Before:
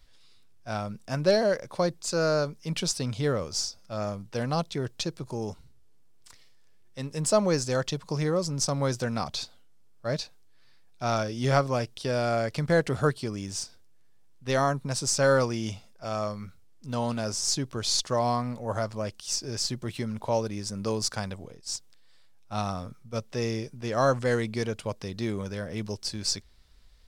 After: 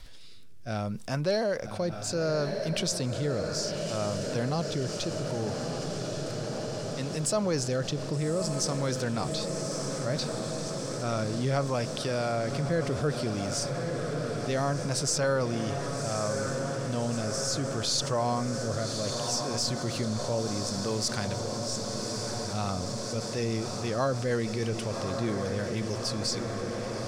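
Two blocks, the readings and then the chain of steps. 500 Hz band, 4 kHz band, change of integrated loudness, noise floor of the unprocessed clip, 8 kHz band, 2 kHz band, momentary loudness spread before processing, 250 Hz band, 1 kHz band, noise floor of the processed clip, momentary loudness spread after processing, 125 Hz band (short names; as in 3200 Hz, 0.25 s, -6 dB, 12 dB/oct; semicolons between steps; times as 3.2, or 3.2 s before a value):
-1.5 dB, 0.0 dB, -1.5 dB, -53 dBFS, 0.0 dB, -2.5 dB, 11 LU, +0.5 dB, -2.5 dB, -35 dBFS, 5 LU, +0.5 dB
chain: rotary speaker horn 0.65 Hz, later 6.3 Hz, at 22.09; diffused feedback echo 1.179 s, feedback 74%, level -9 dB; fast leveller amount 50%; gain -5 dB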